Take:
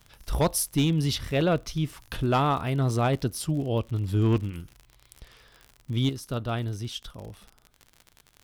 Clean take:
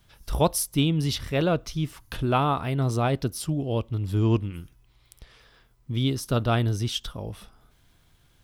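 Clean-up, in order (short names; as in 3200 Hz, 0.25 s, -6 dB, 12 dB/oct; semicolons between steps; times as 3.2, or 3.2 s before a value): clip repair -16.5 dBFS; de-click; gain 0 dB, from 6.09 s +6.5 dB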